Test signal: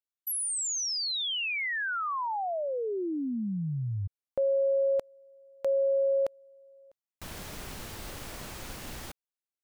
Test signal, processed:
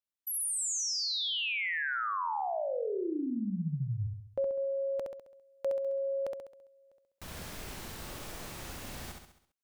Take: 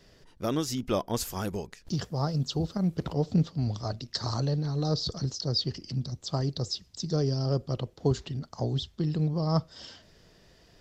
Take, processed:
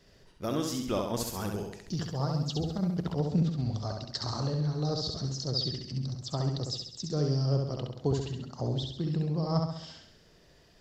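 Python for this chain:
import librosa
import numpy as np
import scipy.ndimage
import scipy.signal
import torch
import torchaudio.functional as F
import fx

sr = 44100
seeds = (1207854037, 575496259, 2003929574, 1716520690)

y = fx.echo_feedback(x, sr, ms=67, feedback_pct=50, wet_db=-4.0)
y = F.gain(torch.from_numpy(y), -3.5).numpy()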